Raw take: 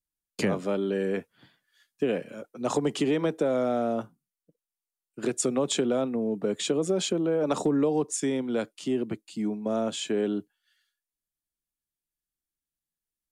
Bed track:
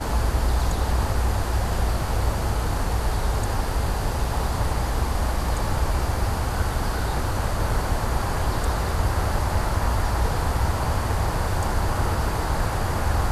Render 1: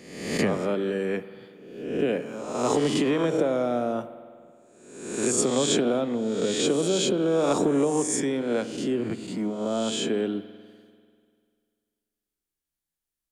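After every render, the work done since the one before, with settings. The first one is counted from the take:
peak hold with a rise ahead of every peak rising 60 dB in 0.91 s
spring reverb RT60 2.1 s, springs 49 ms, chirp 40 ms, DRR 12.5 dB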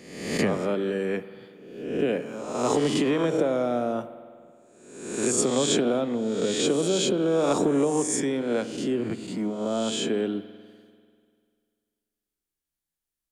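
no processing that can be heard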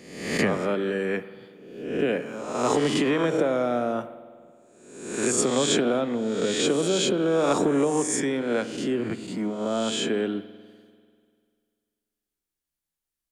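dynamic equaliser 1,700 Hz, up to +5 dB, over −45 dBFS, Q 1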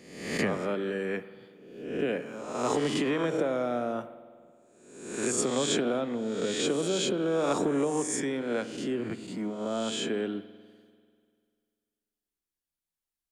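level −5 dB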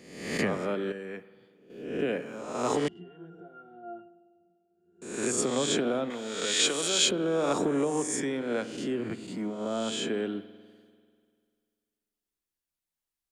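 0:00.92–0:01.70: clip gain −7.5 dB
0:02.88–0:05.02: resonances in every octave F, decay 0.32 s
0:06.10–0:07.11: tilt shelving filter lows −9 dB, about 740 Hz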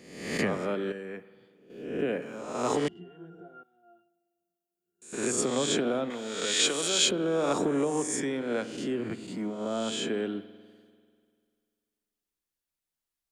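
0:00.98–0:02.22: dynamic equaliser 5,000 Hz, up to −5 dB, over −54 dBFS, Q 0.71
0:03.63–0:05.13: first-order pre-emphasis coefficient 0.9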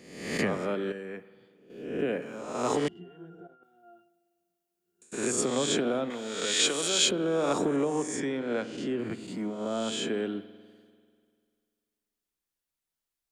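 0:03.47–0:05.12: compressor whose output falls as the input rises −57 dBFS
0:07.76–0:08.99: high-frequency loss of the air 53 metres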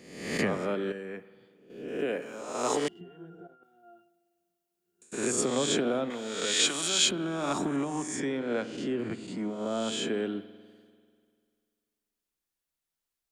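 0:01.88–0:03.01: bass and treble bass −8 dB, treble +5 dB
0:06.65–0:08.20: parametric band 480 Hz −15 dB 0.37 octaves
0:09.03–0:09.49: low-pass filter 9,700 Hz 24 dB per octave

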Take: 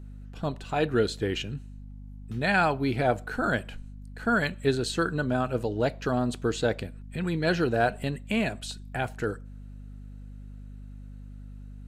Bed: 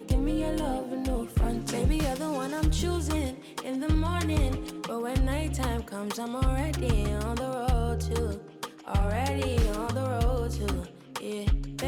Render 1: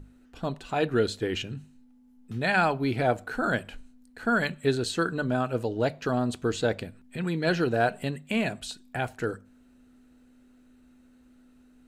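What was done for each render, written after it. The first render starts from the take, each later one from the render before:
mains-hum notches 50/100/150/200 Hz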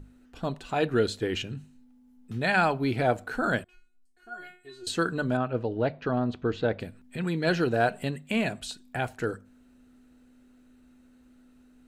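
0:03.64–0:04.87: tuned comb filter 360 Hz, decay 0.36 s, mix 100%
0:05.37–0:06.80: high-frequency loss of the air 250 metres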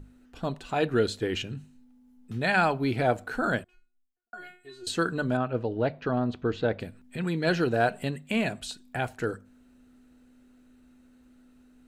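0:03.42–0:04.33: fade out and dull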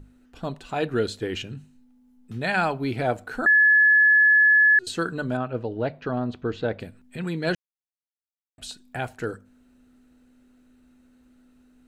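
0:03.46–0:04.79: beep over 1,710 Hz −13 dBFS
0:07.55–0:08.58: silence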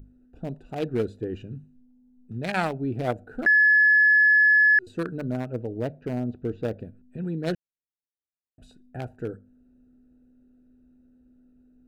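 adaptive Wiener filter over 41 samples
high-shelf EQ 7,800 Hz +11 dB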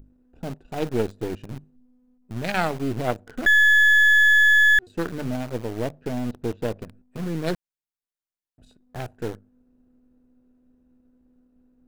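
gain on one half-wave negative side −7 dB
in parallel at −4 dB: bit reduction 6 bits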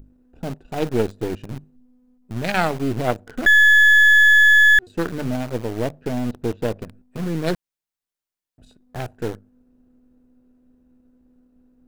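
level +3.5 dB

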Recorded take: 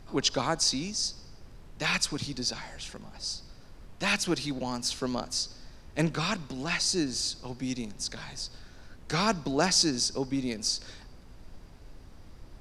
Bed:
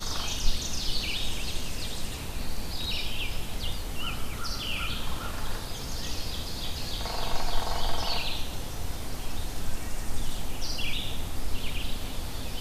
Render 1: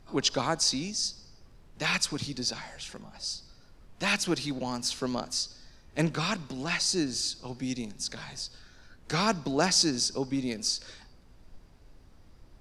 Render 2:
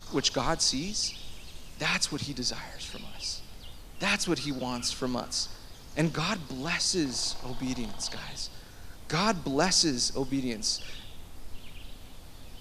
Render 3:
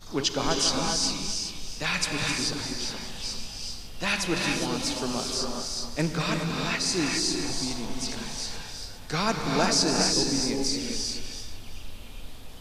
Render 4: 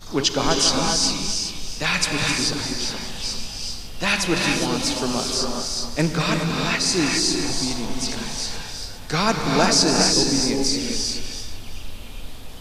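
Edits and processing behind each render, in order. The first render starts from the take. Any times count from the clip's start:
noise reduction from a noise print 6 dB
mix in bed −13.5 dB
feedback delay that plays each chunk backwards 197 ms, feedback 45%, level −9 dB; reverb whose tail is shaped and stops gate 440 ms rising, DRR 1 dB
level +6 dB

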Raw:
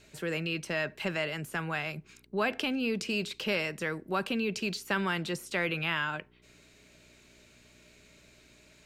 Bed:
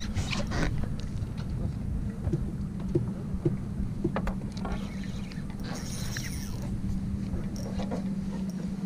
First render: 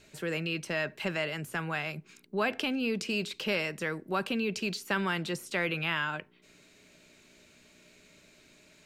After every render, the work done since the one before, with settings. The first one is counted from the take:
hum removal 60 Hz, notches 2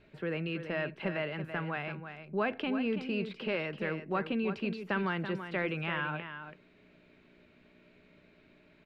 high-frequency loss of the air 420 metres
single-tap delay 333 ms −9.5 dB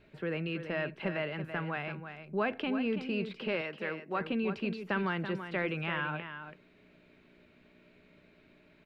0:03.61–0:04.21: high-pass filter 380 Hz 6 dB per octave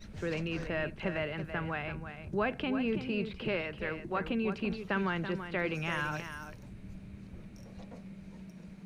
mix in bed −15.5 dB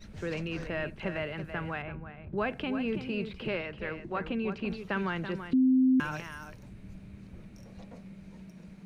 0:01.82–0:02.38: high-frequency loss of the air 380 metres
0:03.58–0:04.66: high-frequency loss of the air 60 metres
0:05.53–0:06.00: beep over 259 Hz −19.5 dBFS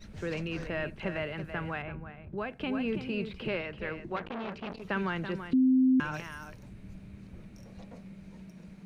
0:02.10–0:02.60: fade out, to −9.5 dB
0:04.16–0:04.82: saturating transformer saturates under 1,300 Hz
0:05.59–0:06.14: high-frequency loss of the air 61 metres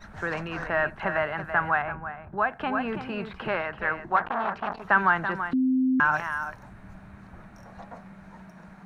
flat-topped bell 1,100 Hz +15 dB
notch filter 4,800 Hz, Q 25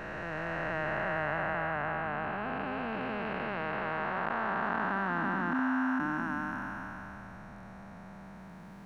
spectrum smeared in time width 1,170 ms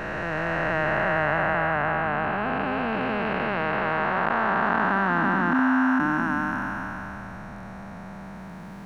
level +9 dB

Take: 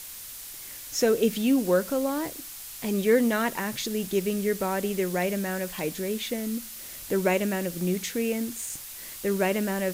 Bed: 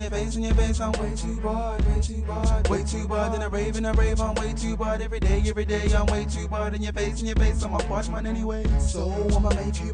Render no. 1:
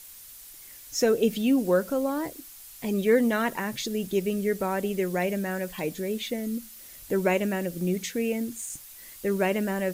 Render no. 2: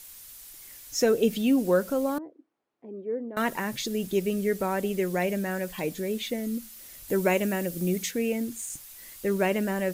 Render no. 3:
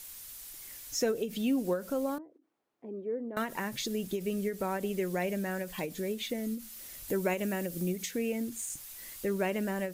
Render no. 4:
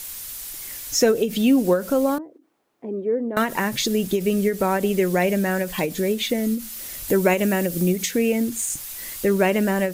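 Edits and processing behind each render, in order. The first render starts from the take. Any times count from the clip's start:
broadband denoise 8 dB, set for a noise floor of −41 dBFS
0:02.18–0:03.37: four-pole ladder band-pass 400 Hz, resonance 35%; 0:07.08–0:08.11: high-shelf EQ 6,900 Hz +6 dB; 0:08.93–0:09.49: one scale factor per block 7 bits
downward compressor 1.5 to 1, threshold −37 dBFS, peak gain reduction 7 dB; every ending faded ahead of time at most 170 dB per second
level +12 dB

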